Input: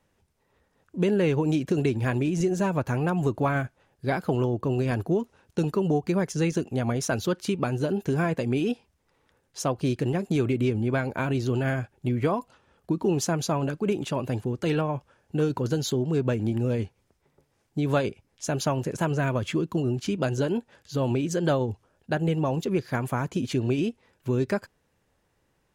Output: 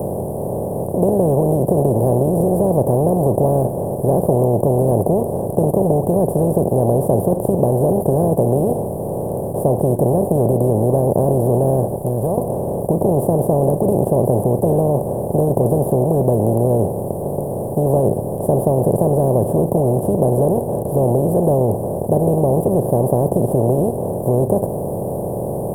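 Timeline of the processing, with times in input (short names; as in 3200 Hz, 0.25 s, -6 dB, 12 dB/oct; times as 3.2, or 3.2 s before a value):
11.96–12.38 passive tone stack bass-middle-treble 10-0-10
whole clip: per-bin compression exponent 0.2; inverse Chebyshev band-stop 1300–6800 Hz, stop band 40 dB; bell 290 Hz -9.5 dB 0.94 oct; gain +6 dB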